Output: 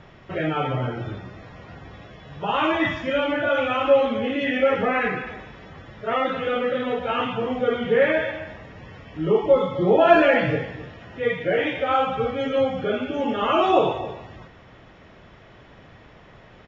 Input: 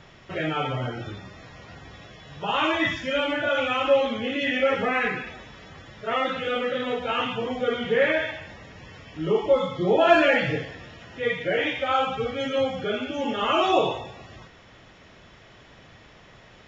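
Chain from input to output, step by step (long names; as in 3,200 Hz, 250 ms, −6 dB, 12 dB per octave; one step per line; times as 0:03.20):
low-pass filter 1,700 Hz 6 dB per octave
slap from a distant wall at 45 metres, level −15 dB
level +3.5 dB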